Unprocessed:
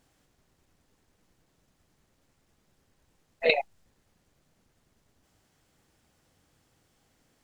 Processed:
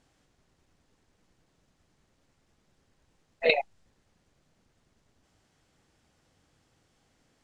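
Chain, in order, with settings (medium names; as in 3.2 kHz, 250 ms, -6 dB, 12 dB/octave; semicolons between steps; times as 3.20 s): low-pass 8.2 kHz 12 dB/octave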